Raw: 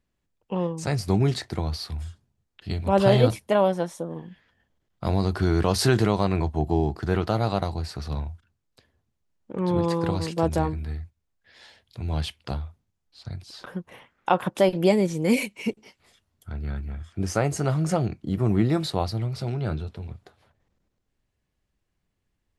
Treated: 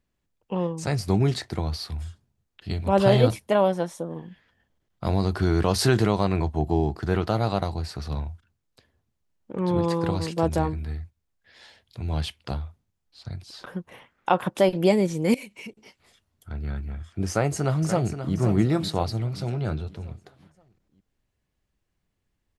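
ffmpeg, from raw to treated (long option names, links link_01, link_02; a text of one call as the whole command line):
ffmpeg -i in.wav -filter_complex "[0:a]asettb=1/sr,asplit=3[link_01][link_02][link_03];[link_01]atrim=end=15.344[link_04];[link_02]atrim=start=15.34:end=16.5,asetpts=PTS-STARTPTS,afade=type=in:duration=0.004:curve=qsin,afade=type=out:start_time=1.156:duration=0.004:curve=qsin,acompressor=threshold=-37dB:ratio=5:attack=3.2:release=140:knee=1:detection=peak[link_05];[link_03]atrim=start=16.496[link_06];[link_04][link_05]acrossfade=duration=0.004:curve1=hsin:curve2=qsin[link_07];[link_07][link_06]acrossfade=duration=0.004:curve1=qsin:curve2=hsin,asplit=2[link_08][link_09];[link_09]afade=type=in:start_time=17.29:duration=0.01,afade=type=out:start_time=18.35:duration=0.01,aecho=0:1:530|1060|1590|2120|2650:0.334965|0.150734|0.0678305|0.0305237|0.0137357[link_10];[link_08][link_10]amix=inputs=2:normalize=0" out.wav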